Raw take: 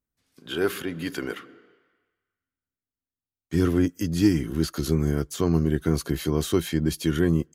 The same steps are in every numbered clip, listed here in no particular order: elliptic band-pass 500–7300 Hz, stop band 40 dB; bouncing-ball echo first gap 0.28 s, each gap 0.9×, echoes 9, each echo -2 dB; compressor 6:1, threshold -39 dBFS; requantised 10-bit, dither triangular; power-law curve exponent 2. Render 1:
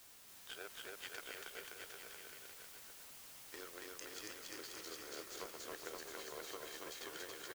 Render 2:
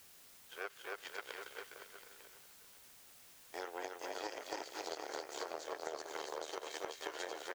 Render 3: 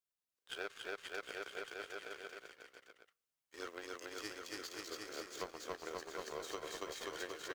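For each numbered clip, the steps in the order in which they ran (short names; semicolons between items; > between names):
elliptic band-pass > compressor > power-law curve > requantised > bouncing-ball echo; bouncing-ball echo > power-law curve > elliptic band-pass > requantised > compressor; elliptic band-pass > requantised > power-law curve > bouncing-ball echo > compressor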